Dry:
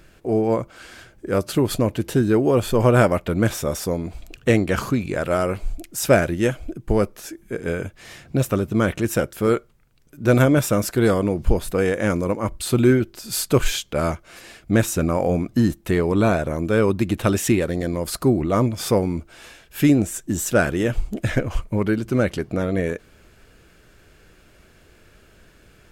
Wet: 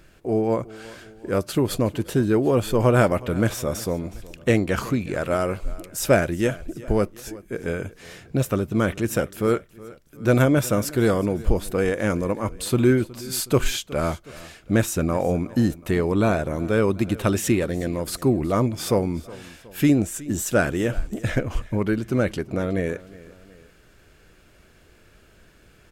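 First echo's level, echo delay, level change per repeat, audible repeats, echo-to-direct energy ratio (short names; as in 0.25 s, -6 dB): -20.0 dB, 0.367 s, -5.5 dB, 2, -19.0 dB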